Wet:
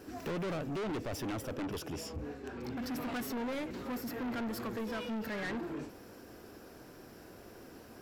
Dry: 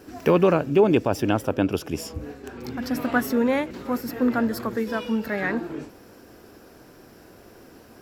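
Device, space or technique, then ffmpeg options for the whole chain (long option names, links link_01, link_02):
saturation between pre-emphasis and de-emphasis: -filter_complex "[0:a]asettb=1/sr,asplit=3[link_01][link_02][link_03];[link_01]atrim=end=1.924[link_04];[link_02]atrim=start=1.92:end=2.77,asetpts=PTS-STARTPTS,afade=type=in:duration=0.004:curve=qsin,afade=type=out:start_time=0.846:duration=0.004:curve=qsin,highshelf=frequency=8600:gain=-8.5[link_05];[link_03]atrim=start=2.766[link_06];[link_04][link_05]acrossfade=duration=0.004:curve1=hsin:curve2=qsin[link_07];[link_07][link_06]acrossfade=duration=0.004:curve1=qsin:curve2=hsin,highshelf=frequency=6400:gain=7.5,asoftclip=type=tanh:threshold=-31dB,highshelf=frequency=6400:gain=-7.5,volume=-3.5dB"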